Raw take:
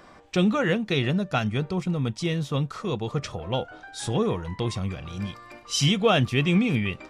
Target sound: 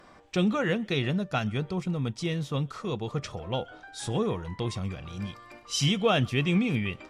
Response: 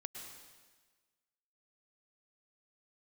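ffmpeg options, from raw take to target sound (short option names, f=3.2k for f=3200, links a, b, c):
-filter_complex "[1:a]atrim=start_sample=2205,atrim=end_sample=4410,asetrate=33516,aresample=44100[a];[0:a][a]afir=irnorm=-1:irlink=0"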